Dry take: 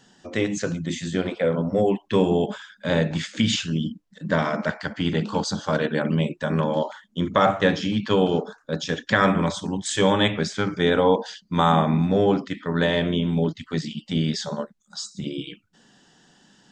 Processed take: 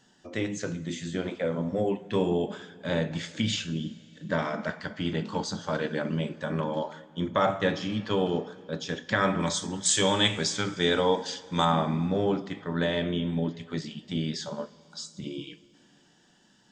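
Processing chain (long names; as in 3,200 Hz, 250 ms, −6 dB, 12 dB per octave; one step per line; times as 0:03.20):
0:09.40–0:11.65: parametric band 7,400 Hz +12 dB 2.3 octaves
coupled-rooms reverb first 0.27 s, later 3 s, from −18 dB, DRR 10 dB
level −6.5 dB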